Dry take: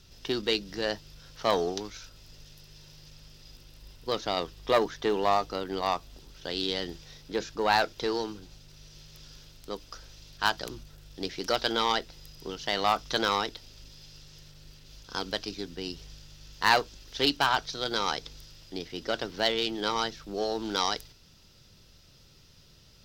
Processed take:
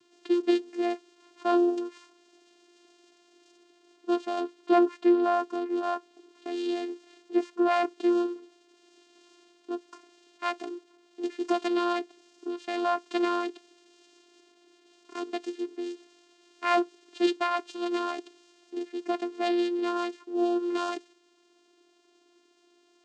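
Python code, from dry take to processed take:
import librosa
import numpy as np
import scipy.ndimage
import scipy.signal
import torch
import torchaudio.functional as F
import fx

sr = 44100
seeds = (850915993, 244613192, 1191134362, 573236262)

y = fx.high_shelf(x, sr, hz=4400.0, db=-5.5)
y = fx.vocoder(y, sr, bands=8, carrier='saw', carrier_hz=349.0)
y = F.gain(torch.from_numpy(y), 3.0).numpy()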